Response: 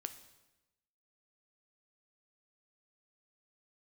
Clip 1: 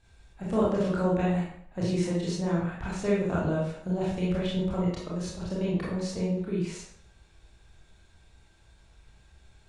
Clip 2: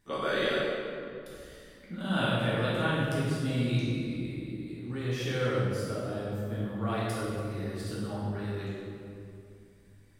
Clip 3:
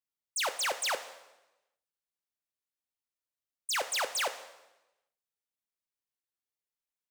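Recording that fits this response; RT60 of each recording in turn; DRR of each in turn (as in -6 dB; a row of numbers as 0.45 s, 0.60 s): 3; 0.65 s, 2.5 s, 1.0 s; -7.0 dB, -9.0 dB, 8.5 dB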